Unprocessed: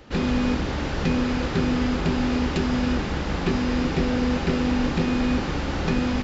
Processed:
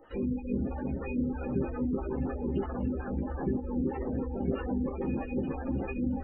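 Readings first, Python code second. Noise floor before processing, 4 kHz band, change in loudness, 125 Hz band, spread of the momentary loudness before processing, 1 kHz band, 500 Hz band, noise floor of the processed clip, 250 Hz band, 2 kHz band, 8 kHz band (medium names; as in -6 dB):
-28 dBFS, under -30 dB, -9.0 dB, -9.0 dB, 3 LU, -11.5 dB, -6.5 dB, -38 dBFS, -8.5 dB, -17.5 dB, no reading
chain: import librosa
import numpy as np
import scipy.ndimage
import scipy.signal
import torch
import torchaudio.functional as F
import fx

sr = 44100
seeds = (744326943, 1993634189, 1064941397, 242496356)

p1 = fx.low_shelf(x, sr, hz=440.0, db=-3.5)
p2 = fx.echo_feedback(p1, sr, ms=376, feedback_pct=15, wet_db=-6.0)
p3 = fx.spec_gate(p2, sr, threshold_db=-15, keep='strong')
p4 = fx.doubler(p3, sr, ms=15.0, db=-5.0)
p5 = p4 + fx.echo_wet_highpass(p4, sr, ms=670, feedback_pct=57, hz=2500.0, wet_db=-15.0, dry=0)
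p6 = fx.stagger_phaser(p5, sr, hz=3.1)
y = F.gain(torch.from_numpy(p6), -3.5).numpy()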